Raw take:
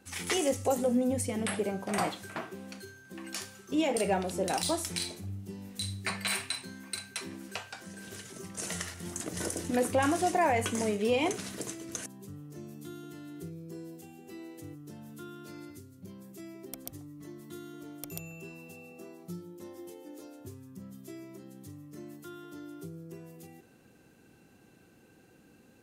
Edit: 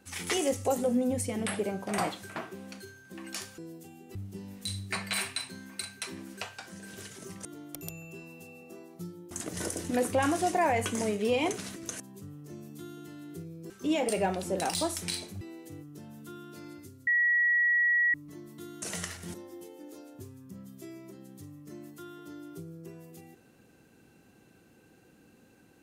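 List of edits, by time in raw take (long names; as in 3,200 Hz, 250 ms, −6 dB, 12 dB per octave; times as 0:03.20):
0:03.58–0:05.29: swap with 0:13.76–0:14.33
0:08.59–0:09.11: swap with 0:17.74–0:19.60
0:11.56–0:11.82: remove
0:15.99–0:17.06: beep over 1,920 Hz −22 dBFS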